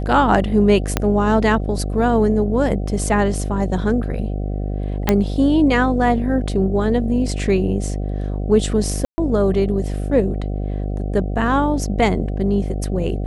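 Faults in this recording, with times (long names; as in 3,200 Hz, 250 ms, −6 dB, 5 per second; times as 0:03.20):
mains buzz 50 Hz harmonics 15 −23 dBFS
0:00.97: click −2 dBFS
0:05.09: click −1 dBFS
0:09.05–0:09.18: drop-out 130 ms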